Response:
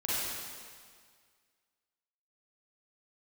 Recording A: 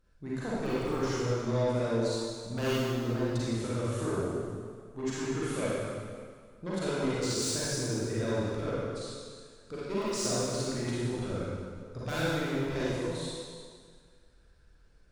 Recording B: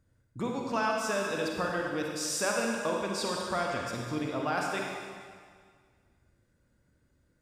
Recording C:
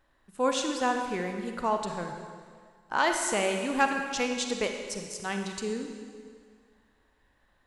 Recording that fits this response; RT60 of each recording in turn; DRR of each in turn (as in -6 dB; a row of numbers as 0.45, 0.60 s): A; 1.9, 1.9, 1.9 s; -9.5, -1.0, 4.0 dB